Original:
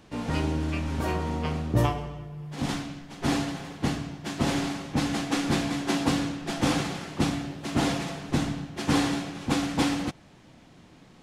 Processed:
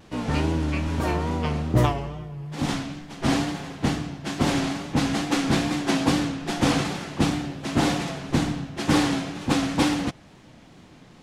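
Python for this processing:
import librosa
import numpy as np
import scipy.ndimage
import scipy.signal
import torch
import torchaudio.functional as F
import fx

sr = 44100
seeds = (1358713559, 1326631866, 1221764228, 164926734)

y = fx.wow_flutter(x, sr, seeds[0], rate_hz=2.1, depth_cents=75.0)
y = fx.doppler_dist(y, sr, depth_ms=0.14)
y = F.gain(torch.from_numpy(y), 3.5).numpy()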